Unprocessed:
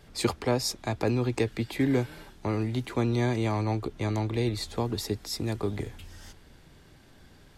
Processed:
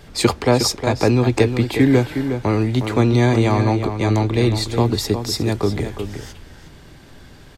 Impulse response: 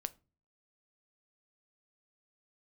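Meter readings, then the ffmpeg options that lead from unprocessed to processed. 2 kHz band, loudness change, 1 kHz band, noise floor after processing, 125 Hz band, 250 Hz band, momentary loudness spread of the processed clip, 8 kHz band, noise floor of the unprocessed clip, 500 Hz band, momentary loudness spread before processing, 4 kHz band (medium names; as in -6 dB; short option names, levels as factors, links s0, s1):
+11.0 dB, +11.0 dB, +11.0 dB, -43 dBFS, +11.5 dB, +11.0 dB, 7 LU, +10.5 dB, -55 dBFS, +11.0 dB, 10 LU, +11.0 dB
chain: -filter_complex "[0:a]equalizer=f=11000:t=o:w=0.23:g=-5,asplit=2[s0][s1];[s1]adelay=361.5,volume=0.398,highshelf=f=4000:g=-8.13[s2];[s0][s2]amix=inputs=2:normalize=0,asplit=2[s3][s4];[1:a]atrim=start_sample=2205[s5];[s4][s5]afir=irnorm=-1:irlink=0,volume=0.531[s6];[s3][s6]amix=inputs=2:normalize=0,volume=2.37"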